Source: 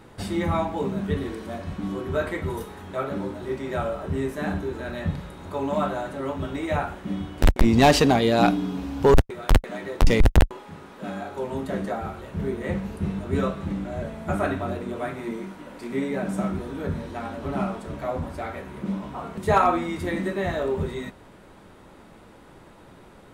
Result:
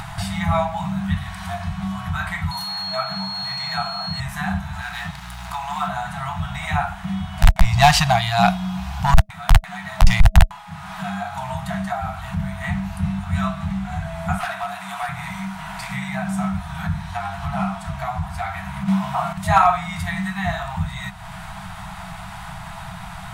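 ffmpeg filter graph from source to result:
-filter_complex "[0:a]asettb=1/sr,asplit=3[a][b][c];[a]atrim=end=2.514[d];[b]atrim=start=2.51:end=4.2,asetpts=PTS-STARTPTS,afade=t=in:d=0.004:c=qsin,afade=t=out:st=1.686:d=0.004:c=qsin,highpass=190,aeval=exprs='val(0)+0.0178*sin(2*PI*4300*n/s)':c=same[e];[c]atrim=start=4.196[f];[d][e]acrossfade=d=0.004:c1=hsin:c2=qsin[g];[g][f]acrossfade=d=0.004:c1=qsin:c2=hsin,asettb=1/sr,asplit=3[h][i][j];[h]atrim=end=4.814[k];[i]atrim=start=4.81:end=5.88,asetpts=PTS-STARTPTS,afade=t=in:d=0.004:c=qsin,afade=t=out:st=1.066:d=0.004:c=qsin,highpass=f=660:p=1,aeval=exprs='sgn(val(0))*max(abs(val(0))-0.00376,0)':c=same,aeval=exprs='val(0)+0.00282*(sin(2*PI*60*n/s)+sin(2*PI*2*60*n/s)/2+sin(2*PI*3*60*n/s)/3+sin(2*PI*4*60*n/s)/4+sin(2*PI*5*60*n/s)/5)':c=same[l];[j]atrim=start=5.876[m];[k][l]acrossfade=d=0.004:c1=hsin:c2=qsin[n];[n][m]acrossfade=d=0.004:c1=qsin:c2=hsin,asettb=1/sr,asplit=3[o][p][q];[o]atrim=end=14.384[r];[p]atrim=start=14.38:end=15.09,asetpts=PTS-STARTPTS,afade=t=in:d=0.004:c=qsin,afade=t=out:st=0.706:d=0.004:c=qsin,highpass=400,volume=25.5dB,asoftclip=hard,volume=-25.5dB,equalizer=f=11k:t=o:w=0.69:g=4.5[s];[q]atrim=start=15.086[t];[r][s]acrossfade=d=0.004:c1=hsin:c2=qsin[u];[u][t]acrossfade=d=0.004:c1=qsin:c2=hsin,asettb=1/sr,asplit=3[v][w][x];[v]atrim=end=18.884[y];[w]atrim=start=18.88:end=19.33,asetpts=PTS-STARTPTS,afade=t=in:d=0.004:c=qsin,afade=t=out:st=0.446:d=0.004:c=qsin,highpass=120,highshelf=f=11k:g=5,acontrast=89[z];[x]atrim=start=19.326[aa];[y][z]acrossfade=d=0.004:c1=hsin:c2=qsin[ab];[ab][aa]acrossfade=d=0.004:c1=qsin:c2=hsin,afftfilt=real='re*(1-between(b*sr/4096,200,640))':imag='im*(1-between(b*sr/4096,200,640))':win_size=4096:overlap=0.75,acompressor=mode=upward:threshold=-27dB:ratio=2.5,volume=5.5dB"

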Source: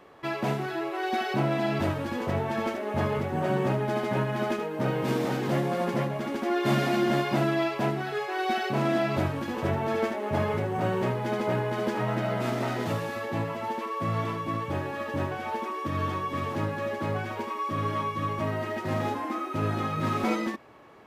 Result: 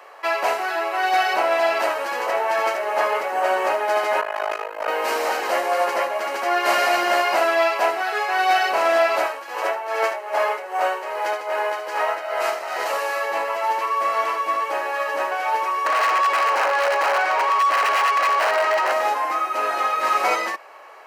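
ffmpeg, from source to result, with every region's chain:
-filter_complex "[0:a]asettb=1/sr,asplit=3[a][b][c];[a]atrim=end=4.214[d];[b]atrim=start=4.21:end=4.88,asetpts=PTS-STARTPTS,afade=t=in:d=0.004:c=qsin,afade=t=out:st=0.666:d=0.004:c=qsin,bass=f=250:g=-14,treble=f=4k:g=-5,tremolo=f=52:d=1[e];[c]atrim=start=4.876[f];[d][e]acrossfade=d=0.004:c1=hsin:c2=qsin[g];[g][f]acrossfade=d=0.004:c1=qsin:c2=hsin,asettb=1/sr,asplit=3[h][i][j];[h]atrim=end=9.244[k];[i]atrim=start=9.24:end=12.93,asetpts=PTS-STARTPTS,afade=t=in:d=0.004:c=qsin,afade=t=out:st=3.686:d=0.004:c=qsin,highpass=300,tremolo=f=2.5:d=0.67[l];[j]atrim=start=12.926[m];[k][l]acrossfade=d=0.004:c1=hsin:c2=qsin[n];[n][m]acrossfade=d=0.004:c1=qsin:c2=hsin,asettb=1/sr,asplit=3[o][p][q];[o]atrim=end=15.864[r];[p]atrim=start=15.86:end=18.92,asetpts=PTS-STARTPTS,afade=t=in:d=0.004:c=qsin,afade=t=out:st=3.056:d=0.004:c=qsin,highpass=f=160:w=0.5412,highpass=f=160:w=1.3066,aeval=exprs='(mod(16.8*val(0)+1,2)-1)/16.8':c=same,asplit=2[s][t];[t]highpass=f=720:p=1,volume=22dB,asoftclip=type=tanh:threshold=-21.5dB[u];[s][u]amix=inputs=2:normalize=0,lowpass=f=1.4k:p=1,volume=-6dB[v];[q]atrim=start=18.916[w];[r][v]acrossfade=d=0.004:c1=hsin:c2=qsin[x];[x][w]acrossfade=d=0.004:c1=qsin:c2=hsin,highpass=f=570:w=0.5412,highpass=f=570:w=1.3066,bandreject=f=3.5k:w=5.3,acontrast=24,volume=6.5dB"

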